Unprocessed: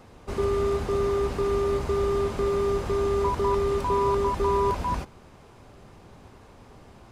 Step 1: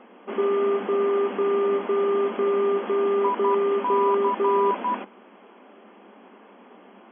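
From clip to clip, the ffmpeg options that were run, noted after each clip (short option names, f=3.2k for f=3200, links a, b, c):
-af "afftfilt=real='re*between(b*sr/4096,190,3400)':imag='im*between(b*sr/4096,190,3400)':win_size=4096:overlap=0.75,volume=3dB"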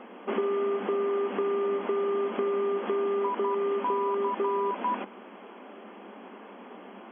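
-af "acompressor=threshold=-29dB:ratio=6,volume=3.5dB"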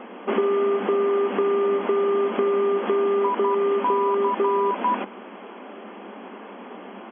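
-af "aresample=8000,aresample=44100,volume=6.5dB"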